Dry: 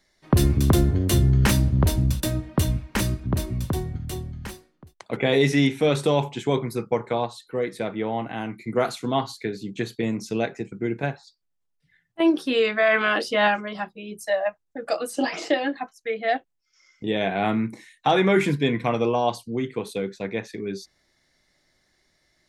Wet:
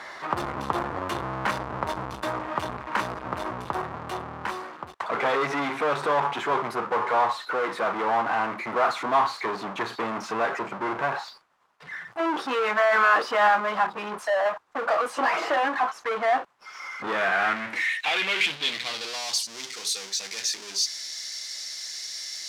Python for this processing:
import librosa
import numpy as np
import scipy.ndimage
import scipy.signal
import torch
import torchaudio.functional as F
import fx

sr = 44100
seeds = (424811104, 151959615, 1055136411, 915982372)

y = fx.power_curve(x, sr, exponent=0.35)
y = fx.filter_sweep_bandpass(y, sr, from_hz=1100.0, to_hz=5600.0, start_s=16.89, end_s=19.37, q=2.3)